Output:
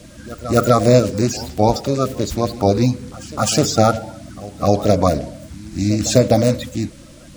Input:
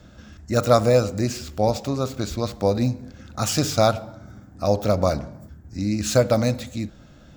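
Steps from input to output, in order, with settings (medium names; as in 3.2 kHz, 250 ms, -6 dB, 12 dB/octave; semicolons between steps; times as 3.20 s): coarse spectral quantiser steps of 30 dB; band noise 860–10000 Hz -57 dBFS; pre-echo 256 ms -19 dB; loudness maximiser +7.5 dB; trim -1 dB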